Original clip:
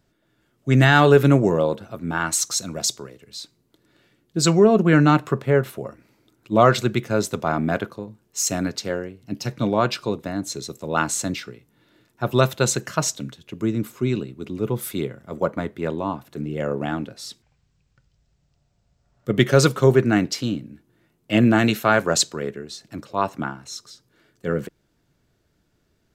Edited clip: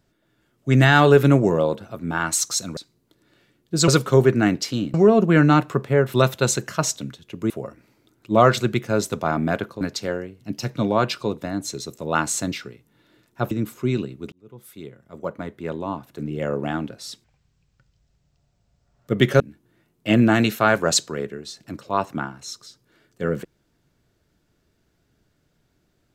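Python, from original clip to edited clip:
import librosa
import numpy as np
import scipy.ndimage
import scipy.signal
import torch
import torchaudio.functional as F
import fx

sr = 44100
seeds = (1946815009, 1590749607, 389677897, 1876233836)

y = fx.edit(x, sr, fx.cut(start_s=2.77, length_s=0.63),
    fx.cut(start_s=8.02, length_s=0.61),
    fx.move(start_s=12.33, length_s=1.36, to_s=5.71),
    fx.fade_in_span(start_s=14.5, length_s=2.04),
    fx.move(start_s=19.58, length_s=1.06, to_s=4.51), tone=tone)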